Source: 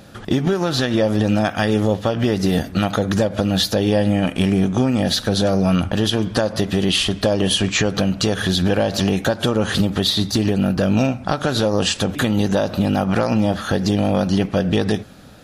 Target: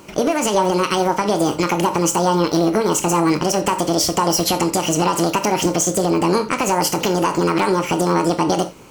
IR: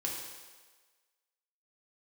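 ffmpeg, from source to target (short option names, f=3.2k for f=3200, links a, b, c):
-filter_complex "[0:a]asplit=2[a][b];[1:a]atrim=start_sample=2205,afade=t=out:st=0.17:d=0.01,atrim=end_sample=7938,adelay=41[c];[b][c]afir=irnorm=-1:irlink=0,volume=-11dB[d];[a][d]amix=inputs=2:normalize=0,asetrate=76440,aresample=44100"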